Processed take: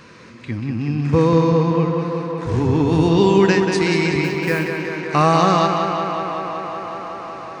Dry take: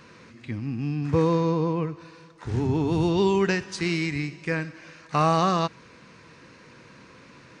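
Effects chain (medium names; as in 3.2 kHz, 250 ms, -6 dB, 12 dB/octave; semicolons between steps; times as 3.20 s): 4.24–4.70 s: block-companded coder 5-bit; tape echo 187 ms, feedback 90%, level -5 dB, low-pass 5.4 kHz; trim +6 dB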